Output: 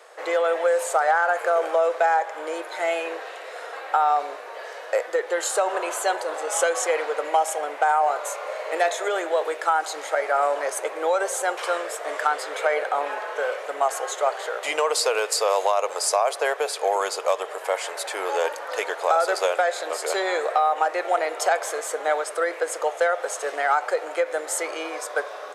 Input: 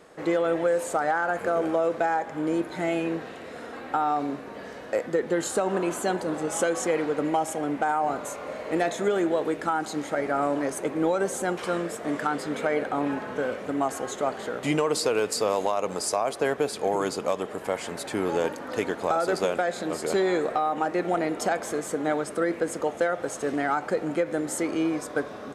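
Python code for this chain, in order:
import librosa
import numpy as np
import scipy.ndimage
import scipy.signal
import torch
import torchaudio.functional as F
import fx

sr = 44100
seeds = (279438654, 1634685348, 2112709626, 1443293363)

y = scipy.signal.sosfilt(scipy.signal.cheby2(4, 40, 250.0, 'highpass', fs=sr, output='sos'), x)
y = F.gain(torch.from_numpy(y), 5.5).numpy()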